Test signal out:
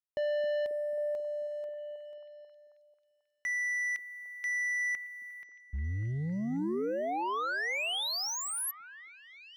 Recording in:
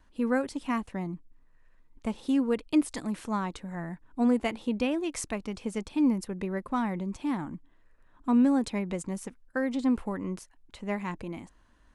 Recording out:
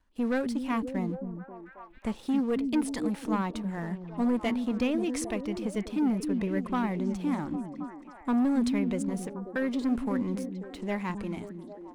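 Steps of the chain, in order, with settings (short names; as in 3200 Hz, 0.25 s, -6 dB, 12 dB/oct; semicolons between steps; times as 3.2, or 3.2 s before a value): sample leveller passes 2; on a send: delay with a stepping band-pass 0.269 s, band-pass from 230 Hz, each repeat 0.7 oct, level -4 dB; on the sum: dynamic EQ 7500 Hz, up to -4 dB, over -50 dBFS, Q 1.9; gain -6 dB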